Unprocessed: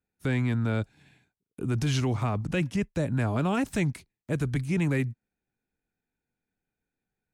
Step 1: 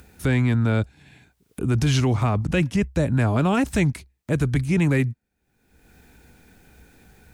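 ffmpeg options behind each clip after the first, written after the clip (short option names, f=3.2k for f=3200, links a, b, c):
-af "acompressor=mode=upward:threshold=-37dB:ratio=2.5,equalizer=f=65:t=o:w=0.39:g=14,volume=6dB"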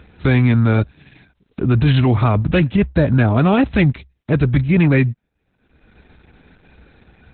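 -af "volume=6.5dB" -ar 48000 -c:a libopus -b:a 8k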